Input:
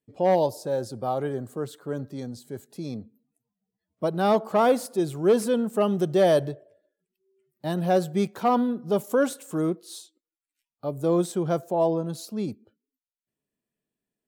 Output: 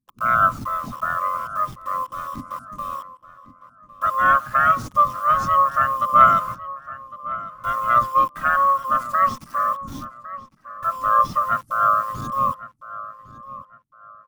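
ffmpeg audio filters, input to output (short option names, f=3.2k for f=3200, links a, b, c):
-filter_complex "[0:a]afftfilt=real='real(if(lt(b,272),68*(eq(floor(b/68),0)*3+eq(floor(b/68),1)*0+eq(floor(b/68),2)*1+eq(floor(b/68),3)*2)+mod(b,68),b),0)':imag='imag(if(lt(b,272),68*(eq(floor(b/68),0)*3+eq(floor(b/68),1)*0+eq(floor(b/68),2)*1+eq(floor(b/68),3)*2)+mod(b,68),b),0)':win_size=2048:overlap=0.75,asetrate=28595,aresample=44100,atempo=1.54221,aphaser=in_gain=1:out_gain=1:delay=4.5:decay=0.47:speed=0.16:type=triangular,acrossover=split=300|6600[a][b][c];[a]aeval=exprs='0.015*sin(PI/2*3.98*val(0)/0.015)':c=same[d];[b]acrusher=bits=6:mix=0:aa=0.000001[e];[d][e][c]amix=inputs=3:normalize=0,equalizer=f=125:t=o:w=1:g=11,equalizer=f=250:t=o:w=1:g=9,equalizer=f=500:t=o:w=1:g=-7,equalizer=f=1k:t=o:w=1:g=6,equalizer=f=4k:t=o:w=1:g=-6,equalizer=f=8k:t=o:w=1:g=-5,asplit=2[f][g];[g]adelay=1106,lowpass=f=2.9k:p=1,volume=-15.5dB,asplit=2[h][i];[i]adelay=1106,lowpass=f=2.9k:p=1,volume=0.3,asplit=2[j][k];[k]adelay=1106,lowpass=f=2.9k:p=1,volume=0.3[l];[f][h][j][l]amix=inputs=4:normalize=0,asplit=2[m][n];[n]asetrate=22050,aresample=44100,atempo=2,volume=-16dB[o];[m][o]amix=inputs=2:normalize=0"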